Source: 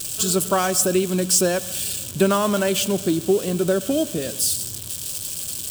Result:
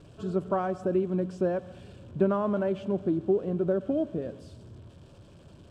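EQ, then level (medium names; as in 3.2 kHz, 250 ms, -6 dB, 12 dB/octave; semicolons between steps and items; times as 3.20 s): low-pass 1 kHz 12 dB/octave; -6.0 dB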